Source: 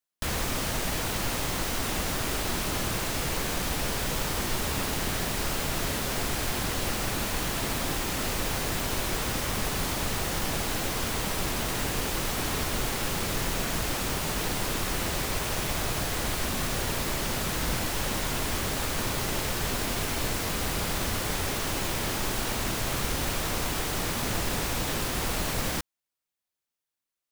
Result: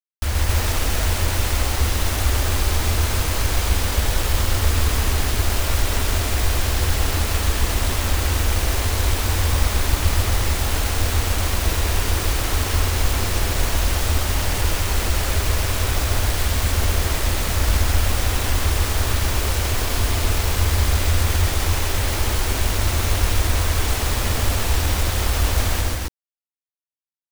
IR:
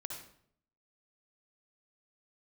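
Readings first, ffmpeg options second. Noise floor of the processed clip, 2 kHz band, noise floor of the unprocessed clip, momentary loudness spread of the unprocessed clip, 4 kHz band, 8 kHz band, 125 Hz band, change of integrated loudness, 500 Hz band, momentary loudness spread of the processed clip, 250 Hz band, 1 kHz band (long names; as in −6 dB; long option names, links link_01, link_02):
below −85 dBFS, +5.5 dB, below −85 dBFS, 0 LU, +5.5 dB, +5.5 dB, +13.5 dB, +7.5 dB, +4.5 dB, 2 LU, +2.5 dB, +5.0 dB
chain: -af "afftfilt=real='re*gte(hypot(re,im),0.0158)':imag='im*gte(hypot(re,im),0.0158)':win_size=1024:overlap=0.75,acrusher=bits=2:mode=log:mix=0:aa=0.000001,lowshelf=frequency=110:width_type=q:width=3:gain=8.5,acrusher=bits=4:mix=0:aa=0.000001,aecho=1:1:128.3|268.2:0.794|0.891"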